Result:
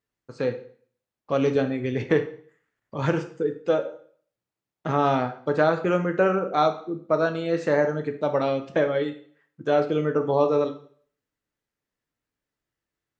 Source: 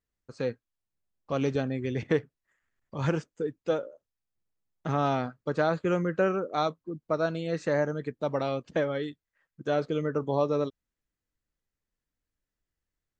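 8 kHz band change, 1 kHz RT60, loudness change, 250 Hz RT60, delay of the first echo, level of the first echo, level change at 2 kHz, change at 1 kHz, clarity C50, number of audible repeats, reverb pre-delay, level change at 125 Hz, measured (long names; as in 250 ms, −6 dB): can't be measured, 0.50 s, +5.5 dB, 0.50 s, no echo audible, no echo audible, +5.5 dB, +6.0 dB, 11.5 dB, no echo audible, 4 ms, +2.0 dB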